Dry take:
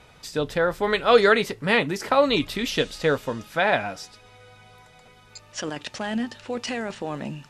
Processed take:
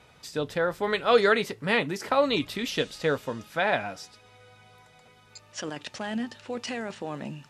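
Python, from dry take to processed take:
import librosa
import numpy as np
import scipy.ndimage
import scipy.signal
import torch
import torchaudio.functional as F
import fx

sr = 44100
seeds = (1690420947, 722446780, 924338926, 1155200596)

y = scipy.signal.sosfilt(scipy.signal.butter(2, 61.0, 'highpass', fs=sr, output='sos'), x)
y = y * librosa.db_to_amplitude(-4.0)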